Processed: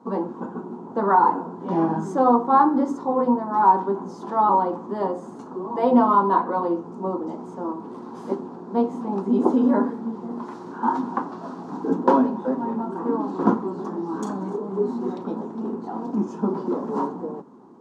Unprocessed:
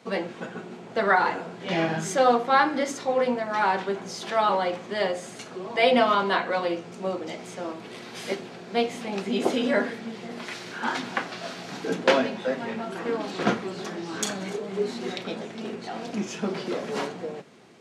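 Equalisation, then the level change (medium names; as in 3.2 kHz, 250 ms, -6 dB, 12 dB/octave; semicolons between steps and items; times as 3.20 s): FFT filter 130 Hz 0 dB, 270 Hz +13 dB, 660 Hz -2 dB, 950 Hz +14 dB, 2.2 kHz -22 dB, 6.9 kHz -12 dB, 11 kHz -15 dB; -2.5 dB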